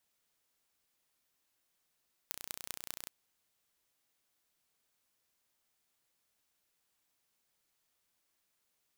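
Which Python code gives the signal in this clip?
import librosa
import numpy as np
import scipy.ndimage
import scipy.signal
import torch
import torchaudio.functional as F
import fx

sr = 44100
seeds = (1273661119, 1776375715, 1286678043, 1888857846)

y = fx.impulse_train(sr, length_s=0.78, per_s=30.2, accent_every=6, level_db=-10.0)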